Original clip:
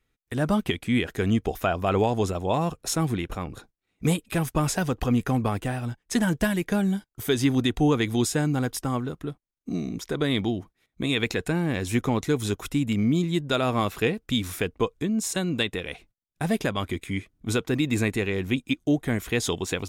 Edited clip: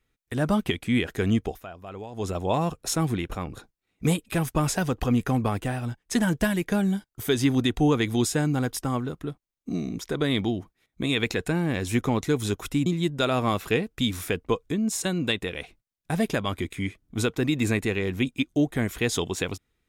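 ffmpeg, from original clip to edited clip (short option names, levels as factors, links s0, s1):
-filter_complex "[0:a]asplit=4[s0][s1][s2][s3];[s0]atrim=end=1.63,asetpts=PTS-STARTPTS,afade=t=out:st=1.4:d=0.23:silence=0.158489[s4];[s1]atrim=start=1.63:end=2.12,asetpts=PTS-STARTPTS,volume=0.158[s5];[s2]atrim=start=2.12:end=12.862,asetpts=PTS-STARTPTS,afade=t=in:d=0.23:silence=0.158489[s6];[s3]atrim=start=13.168[s7];[s4][s5][s6]concat=n=3:v=0:a=1[s8];[s8][s7]acrossfade=d=0.004:c1=hsin:c2=hsin"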